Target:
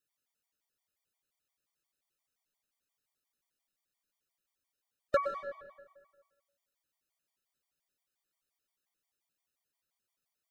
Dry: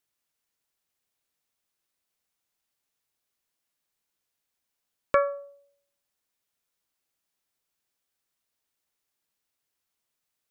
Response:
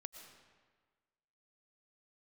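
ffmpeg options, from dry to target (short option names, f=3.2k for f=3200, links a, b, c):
-filter_complex "[0:a]volume=13.5dB,asoftclip=hard,volume=-13.5dB[a];[1:a]atrim=start_sample=2205[b];[a][b]afir=irnorm=-1:irlink=0,afftfilt=real='re*gt(sin(2*PI*5.7*pts/sr)*(1-2*mod(floor(b*sr/1024/610),2)),0)':imag='im*gt(sin(2*PI*5.7*pts/sr)*(1-2*mod(floor(b*sr/1024/610),2)),0)':win_size=1024:overlap=0.75,volume=3dB"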